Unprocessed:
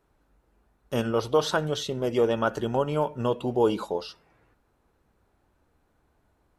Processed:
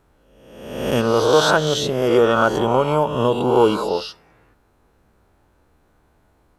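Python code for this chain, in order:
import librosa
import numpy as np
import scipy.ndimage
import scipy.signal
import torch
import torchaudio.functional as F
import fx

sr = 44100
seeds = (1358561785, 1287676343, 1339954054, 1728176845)

y = fx.spec_swells(x, sr, rise_s=1.01)
y = y * librosa.db_to_amplitude(6.0)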